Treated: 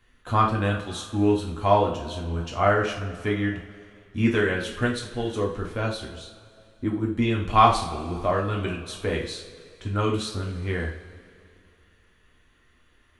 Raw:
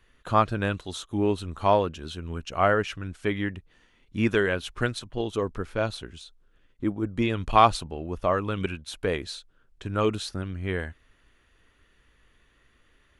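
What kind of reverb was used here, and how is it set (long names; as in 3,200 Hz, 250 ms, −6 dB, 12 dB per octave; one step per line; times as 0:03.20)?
coupled-rooms reverb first 0.41 s, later 2.5 s, from −18 dB, DRR −1.5 dB
level −2.5 dB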